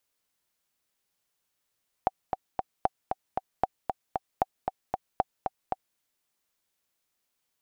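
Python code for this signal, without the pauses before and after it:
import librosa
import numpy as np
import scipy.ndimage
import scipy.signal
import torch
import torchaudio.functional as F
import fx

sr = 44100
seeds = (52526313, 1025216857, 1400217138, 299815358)

y = fx.click_track(sr, bpm=230, beats=3, bars=5, hz=761.0, accent_db=5.0, level_db=-9.5)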